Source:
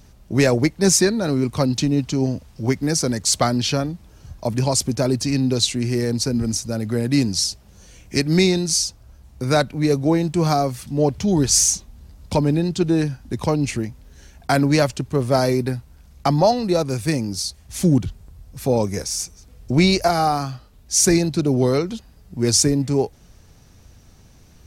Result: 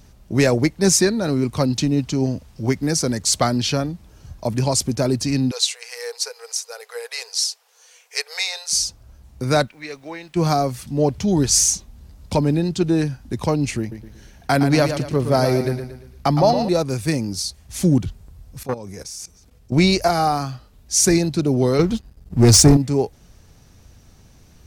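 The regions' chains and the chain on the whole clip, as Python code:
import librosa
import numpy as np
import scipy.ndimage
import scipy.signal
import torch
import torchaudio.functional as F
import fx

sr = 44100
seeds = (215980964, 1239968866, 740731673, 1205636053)

y = fx.chain(x, sr, fx.brickwall_highpass(low_hz=430.0),
    fx.peak_eq(hz=590.0, db=-14.5, octaves=0.31), at=(5.51, 8.73))
y = fx.bandpass_q(y, sr, hz=2200.0, q=1.2, at=(9.66, 10.35), fade=0.02)
y = fx.dmg_noise_colour(y, sr, seeds[0], colour='pink', level_db=-62.0, at=(9.66, 10.35), fade=0.02)
y = fx.chain(y, sr, fx.peak_eq(hz=7300.0, db=-5.0, octaves=0.46),
    fx.echo_feedback(ms=115, feedback_pct=41, wet_db=-8.5), at=(13.8, 16.69))
y = fx.chain(y, sr, fx.highpass(hz=58.0, slope=6),
    fx.level_steps(step_db=17),
    fx.transformer_sat(knee_hz=700.0), at=(18.63, 19.72))
y = fx.chain(y, sr, fx.low_shelf(hz=160.0, db=11.5),
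    fx.leveller(passes=2),
    fx.upward_expand(threshold_db=-31.0, expansion=1.5), at=(21.79, 22.77))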